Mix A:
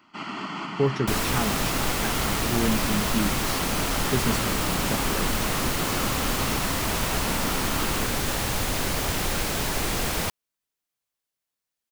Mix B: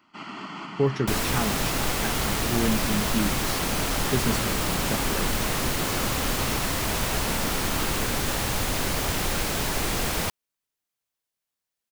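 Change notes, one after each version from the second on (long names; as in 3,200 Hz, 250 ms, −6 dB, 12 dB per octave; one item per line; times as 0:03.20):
first sound −4.0 dB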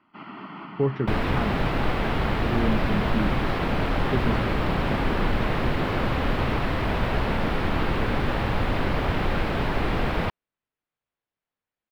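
second sound +4.5 dB
master: add high-frequency loss of the air 430 metres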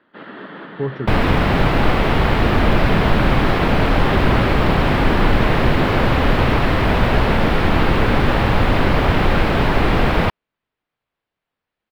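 first sound: remove phaser with its sweep stopped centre 2,500 Hz, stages 8
second sound +9.0 dB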